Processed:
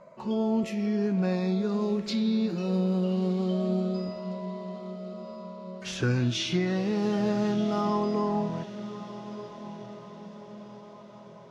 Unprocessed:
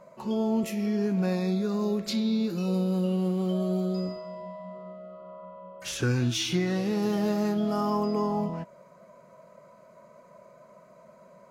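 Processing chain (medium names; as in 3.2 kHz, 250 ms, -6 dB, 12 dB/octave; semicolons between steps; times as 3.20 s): low-pass 5.4 kHz 12 dB/octave; echo that smears into a reverb 1282 ms, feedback 48%, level -13.5 dB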